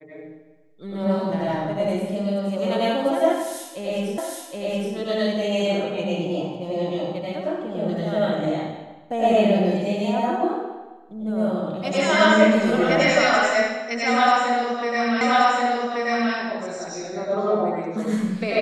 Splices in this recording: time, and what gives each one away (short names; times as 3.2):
4.18 repeat of the last 0.77 s
15.21 repeat of the last 1.13 s